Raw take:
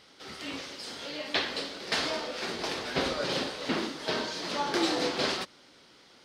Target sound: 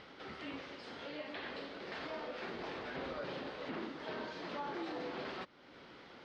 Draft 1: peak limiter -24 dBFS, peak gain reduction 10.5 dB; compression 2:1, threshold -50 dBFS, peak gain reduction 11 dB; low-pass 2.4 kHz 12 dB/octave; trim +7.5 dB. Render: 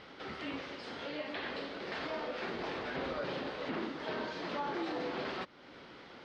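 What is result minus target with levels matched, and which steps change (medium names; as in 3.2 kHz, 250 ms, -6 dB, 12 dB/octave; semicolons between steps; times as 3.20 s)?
compression: peak gain reduction -4.5 dB
change: compression 2:1, threshold -59 dBFS, peak gain reduction 15.5 dB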